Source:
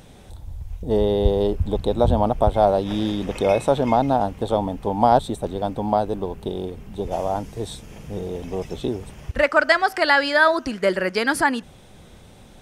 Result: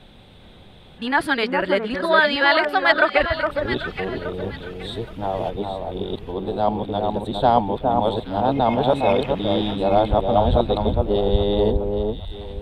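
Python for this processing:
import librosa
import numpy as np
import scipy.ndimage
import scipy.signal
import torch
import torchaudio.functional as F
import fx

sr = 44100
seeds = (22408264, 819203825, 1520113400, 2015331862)

y = np.flip(x).copy()
y = fx.high_shelf_res(y, sr, hz=4700.0, db=-8.5, q=3.0)
y = fx.echo_alternate(y, sr, ms=411, hz=1400.0, feedback_pct=52, wet_db=-4)
y = F.gain(torch.from_numpy(y), -1.0).numpy()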